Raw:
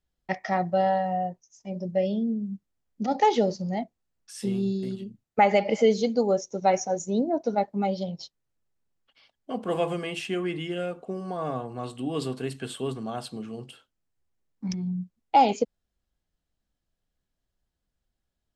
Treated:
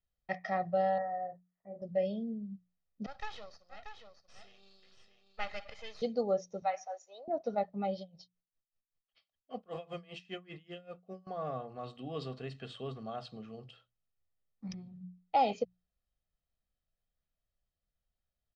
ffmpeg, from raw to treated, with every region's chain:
ffmpeg -i in.wav -filter_complex "[0:a]asettb=1/sr,asplit=3[link_01][link_02][link_03];[link_01]atrim=end=0.984[link_04];[link_02]atrim=start=0.98:end=1.82,asetpts=PTS-STARTPTS,afade=type=in:duration=0.004:curve=qsin,afade=type=out:start_time=0.836:duration=0.004:curve=qsin,asuperstop=centerf=4400:order=20:qfactor=0.65,lowshelf=frequency=310:gain=-10.5,asplit=2[link_05][link_06];[link_06]adelay=35,volume=-7dB[link_07];[link_05][link_07]amix=inputs=2:normalize=0,atrim=end_sample=37044[link_08];[link_03]atrim=start=1.816[link_09];[link_04][link_08]acrossfade=duration=0.004:curve1=hsin:curve2=qsin[link_10];[link_10][link_09]acrossfade=duration=0.004:curve1=qsin:curve2=hsin,asettb=1/sr,asplit=3[link_11][link_12][link_13];[link_11]atrim=end=3.064[link_14];[link_12]atrim=start=3.06:end=6.02,asetpts=PTS-STARTPTS,afade=type=in:duration=0.004:curve=qsin,afade=type=out:start_time=2.956:duration=0.004:curve=qsin,highpass=1200,aeval=exprs='max(val(0),0)':channel_layout=same,aecho=1:1:634:0.422,atrim=end_sample=130536[link_15];[link_13]atrim=start=6.016[link_16];[link_14][link_15]acrossfade=duration=0.004:curve1=hsin:curve2=qsin[link_17];[link_17][link_16]acrossfade=duration=0.004:curve1=qsin:curve2=hsin,asettb=1/sr,asplit=3[link_18][link_19][link_20];[link_18]atrim=end=6.624[link_21];[link_19]atrim=start=6.62:end=7.28,asetpts=PTS-STARTPTS,afade=type=in:duration=0.004:curve=qsin,afade=type=out:start_time=0.656:duration=0.004:curve=qsin,highpass=frequency=730:width=0.5412,highpass=frequency=730:width=1.3066,highshelf=frequency=4100:gain=-7.5[link_22];[link_20]atrim=start=7.276[link_23];[link_21][link_22]acrossfade=duration=0.004:curve1=hsin:curve2=qsin[link_24];[link_24][link_23]acrossfade=duration=0.004:curve1=qsin:curve2=hsin,asettb=1/sr,asplit=3[link_25][link_26][link_27];[link_25]atrim=end=7.994[link_28];[link_26]atrim=start=7.99:end=11.27,asetpts=PTS-STARTPTS,afade=type=in:duration=0.004:curve=qsin,afade=type=out:start_time=3.276:duration=0.004:curve=qsin,highshelf=frequency=4600:gain=7.5,aeval=exprs='val(0)*pow(10,-26*(0.5-0.5*cos(2*PI*5.1*n/s))/20)':channel_layout=same[link_29];[link_27]atrim=start=11.266[link_30];[link_28][link_29]acrossfade=duration=0.004:curve1=hsin:curve2=qsin[link_31];[link_31][link_30]acrossfade=duration=0.004:curve1=qsin:curve2=hsin,lowpass=frequency=5100:width=0.5412,lowpass=frequency=5100:width=1.3066,bandreject=frequency=60:width_type=h:width=6,bandreject=frequency=120:width_type=h:width=6,bandreject=frequency=180:width_type=h:width=6,aecho=1:1:1.6:0.51,volume=-9dB" out.wav

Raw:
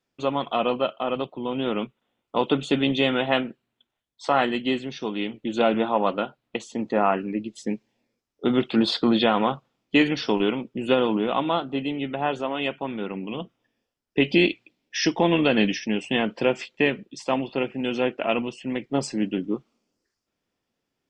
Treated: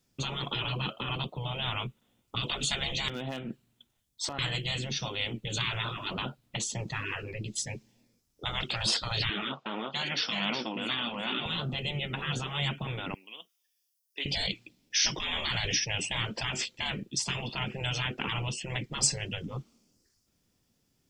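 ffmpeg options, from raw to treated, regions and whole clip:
ffmpeg -i in.wav -filter_complex "[0:a]asettb=1/sr,asplit=3[link_01][link_02][link_03];[link_01]atrim=end=3.084[link_04];[link_02]atrim=start=3.08:end=4.39,asetpts=PTS-STARTPTS,afade=type=in:duration=0.004:curve=qsin,afade=type=out:start_time=1.306:duration=0.004:curve=qsin,acompressor=threshold=-35dB:ratio=8:attack=3.2:release=140:knee=1:detection=peak,aeval=exprs='clip(val(0),-1,0.0299)':channel_layout=same[link_05];[link_03]atrim=start=4.386[link_06];[link_04][link_05]acrossfade=duration=0.004:curve1=hsin:curve2=qsin[link_07];[link_07][link_06]acrossfade=duration=0.004:curve1=qsin:curve2=hsin,asettb=1/sr,asplit=3[link_08][link_09][link_10];[link_08]atrim=end=9.294[link_11];[link_09]atrim=start=9.29:end=11.46,asetpts=PTS-STARTPTS,afade=type=in:duration=0.004:curve=qsin,afade=type=out:start_time=2.166:duration=0.004:curve=qsin,highpass=470,lowpass=3800,aecho=1:1:368:0.398,atrim=end_sample=95697[link_12];[link_10]atrim=start=11.456[link_13];[link_11][link_12]acrossfade=duration=0.004:curve1=hsin:curve2=qsin[link_14];[link_14][link_13]acrossfade=duration=0.004:curve1=qsin:curve2=hsin,asettb=1/sr,asplit=3[link_15][link_16][link_17];[link_15]atrim=end=13.144[link_18];[link_16]atrim=start=13.14:end=14.26,asetpts=PTS-STARTPTS,afade=type=in:duration=0.004:curve=qsin,afade=type=out:start_time=1.116:duration=0.004:curve=qsin,highpass=350,aderivative,bandreject=frequency=7500:width=12[link_19];[link_17]atrim=start=14.256[link_20];[link_18][link_19]acrossfade=duration=0.004:curve1=hsin:curve2=qsin[link_21];[link_21][link_20]acrossfade=duration=0.004:curve1=qsin:curve2=hsin,afftfilt=real='re*lt(hypot(re,im),0.1)':imag='im*lt(hypot(re,im),0.1)':win_size=1024:overlap=0.75,bass=frequency=250:gain=13,treble=frequency=4000:gain=13" out.wav

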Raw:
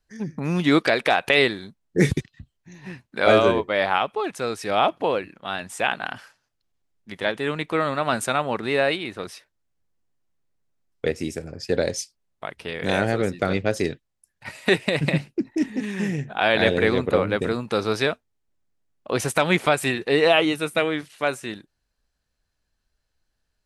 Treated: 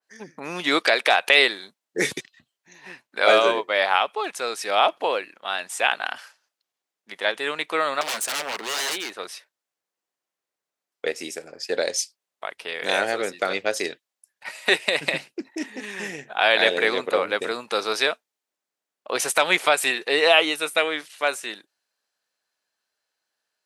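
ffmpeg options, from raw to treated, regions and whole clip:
ffmpeg -i in.wav -filter_complex "[0:a]asettb=1/sr,asplit=3[link_01][link_02][link_03];[link_01]atrim=end=8.014[link_04];[link_02]atrim=start=8.01:end=9.14,asetpts=PTS-STARTPTS,afade=type=in:duration=0.004:curve=qsin,afade=type=out:start_time=1.126:duration=0.004:curve=qsin,equalizer=frequency=410:width_type=o:width=2.3:gain=3,aeval=exprs='0.0631*(abs(mod(val(0)/0.0631+3,4)-2)-1)':channel_layout=same[link_05];[link_03]atrim=start=9.136[link_06];[link_04][link_05]acrossfade=duration=0.004:curve1=hsin:curve2=qsin[link_07];[link_07][link_06]acrossfade=duration=0.004:curve1=qsin:curve2=hsin,highpass=520,adynamicequalizer=threshold=0.0178:dfrequency=2400:dqfactor=0.7:tfrequency=2400:tqfactor=0.7:attack=5:release=100:ratio=0.375:range=2:mode=boostabove:tftype=highshelf,volume=1.5dB" out.wav

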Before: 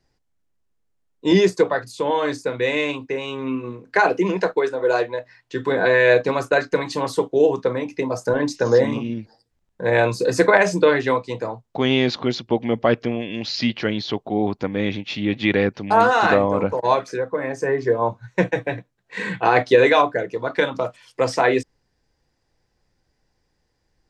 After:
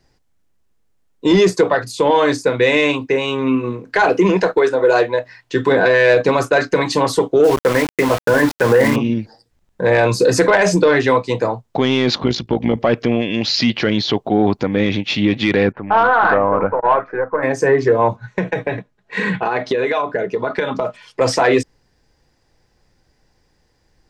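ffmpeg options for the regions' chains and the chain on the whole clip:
ffmpeg -i in.wav -filter_complex "[0:a]asettb=1/sr,asplit=3[link_01][link_02][link_03];[link_01]atrim=end=7.444[link_04];[link_02]atrim=start=7.44:end=8.96,asetpts=PTS-STARTPTS,afade=type=in:duration=0.004:curve=qsin,afade=type=out:start_time=1.516:duration=0.004:curve=qsin,lowpass=frequency=1900:width_type=q:width=2.6,aeval=exprs='val(0)*gte(abs(val(0)),0.0422)':channel_layout=same[link_05];[link_03]atrim=start=8.956[link_06];[link_04][link_05]acrossfade=duration=0.004:curve1=hsin:curve2=qsin[link_07];[link_07][link_06]acrossfade=duration=0.004:curve1=qsin:curve2=hsin,asettb=1/sr,asplit=3[link_08][link_09][link_10];[link_08]atrim=end=12.184[link_11];[link_09]atrim=start=12.18:end=12.77,asetpts=PTS-STARTPTS,afade=type=in:duration=0.004:curve=qsin,afade=type=out:start_time=0.586:duration=0.004:curve=qsin,lowshelf=frequency=190:gain=6.5,tremolo=f=54:d=0.667[link_12];[link_10]atrim=start=12.766[link_13];[link_11][link_12]acrossfade=duration=0.004:curve1=hsin:curve2=qsin[link_14];[link_14][link_13]acrossfade=duration=0.004:curve1=qsin:curve2=hsin,asettb=1/sr,asplit=3[link_15][link_16][link_17];[link_15]atrim=end=15.724[link_18];[link_16]atrim=start=15.72:end=17.43,asetpts=PTS-STARTPTS,afade=type=in:duration=0.004:curve=qsin,afade=type=out:start_time=1.706:duration=0.004:curve=qsin,aeval=exprs='if(lt(val(0),0),0.708*val(0),val(0))':channel_layout=same,lowpass=frequency=1500:width=0.5412,lowpass=frequency=1500:width=1.3066,tiltshelf=frequency=830:gain=-7.5[link_19];[link_17]atrim=start=17.426[link_20];[link_18][link_19]acrossfade=duration=0.004:curve1=hsin:curve2=qsin[link_21];[link_21][link_20]acrossfade=duration=0.004:curve1=qsin:curve2=hsin,asettb=1/sr,asplit=3[link_22][link_23][link_24];[link_22]atrim=end=18.164[link_25];[link_23]atrim=start=18.16:end=21.21,asetpts=PTS-STARTPTS,afade=type=in:duration=0.004:curve=qsin,afade=type=out:start_time=3.046:duration=0.004:curve=qsin,aemphasis=mode=reproduction:type=50kf,aecho=1:1:4.8:0.42,atrim=end_sample=134505,acompressor=threshold=-23dB:ratio=10:attack=3.2:release=140:knee=1:detection=peak[link_26];[link_24]atrim=start=21.206[link_27];[link_25][link_26]acrossfade=duration=0.004:curve1=hsin:curve2=qsin[link_28];[link_28][link_27]acrossfade=duration=0.004:curve1=qsin:curve2=hsin,acontrast=61,alimiter=level_in=7dB:limit=-1dB:release=50:level=0:latency=1,volume=-4.5dB" out.wav

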